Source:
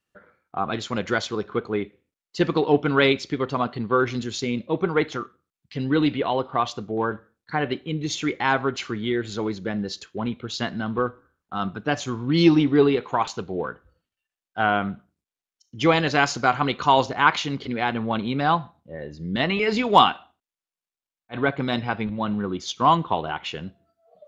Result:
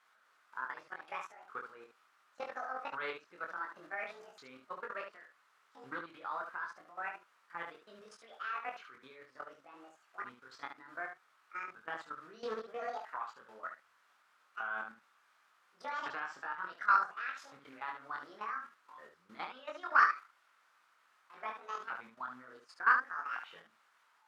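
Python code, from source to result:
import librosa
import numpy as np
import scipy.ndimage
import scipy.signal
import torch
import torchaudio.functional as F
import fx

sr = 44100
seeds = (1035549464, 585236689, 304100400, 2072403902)

p1 = fx.pitch_ramps(x, sr, semitones=11.0, every_ms=1460)
p2 = fx.quant_dither(p1, sr, seeds[0], bits=6, dither='triangular')
p3 = p1 + F.gain(torch.from_numpy(p2), -3.0).numpy()
p4 = fx.bandpass_q(p3, sr, hz=1300.0, q=3.3)
p5 = fx.level_steps(p4, sr, step_db=16)
p6 = p5 + fx.room_early_taps(p5, sr, ms=(23, 72), db=(-3.5, -6.5), dry=0)
p7 = fx.doppler_dist(p6, sr, depth_ms=0.17)
y = F.gain(torch.from_numpy(p7), -8.5).numpy()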